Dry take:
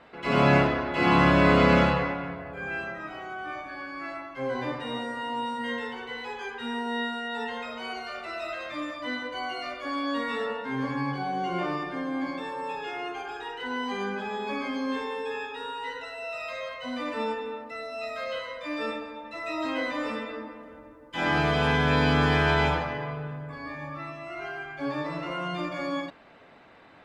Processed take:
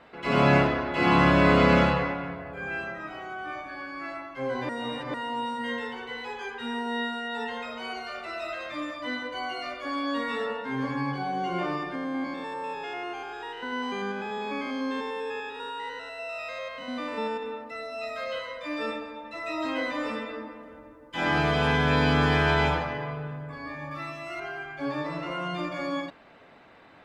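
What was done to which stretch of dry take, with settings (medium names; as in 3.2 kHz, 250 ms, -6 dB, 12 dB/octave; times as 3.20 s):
4.69–5.14 s: reverse
11.95–17.43 s: spectrogram pixelated in time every 100 ms
23.91–24.40 s: treble shelf 3.2 kHz +11 dB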